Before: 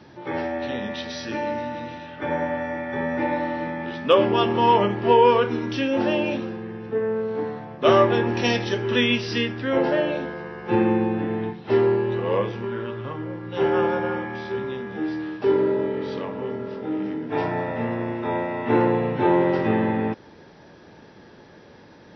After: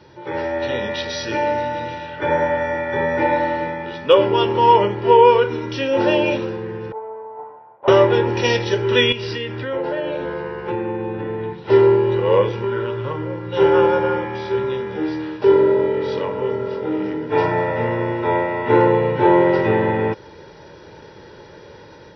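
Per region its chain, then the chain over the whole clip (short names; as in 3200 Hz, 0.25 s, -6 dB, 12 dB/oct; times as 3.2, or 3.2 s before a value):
6.92–7.88 minimum comb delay 8.7 ms + band-pass 800 Hz, Q 4.7 + air absorption 450 m
9.12–11.58 LPF 4300 Hz + compressor 5:1, threshold -27 dBFS
whole clip: comb 2.1 ms, depth 58%; AGC gain up to 5.5 dB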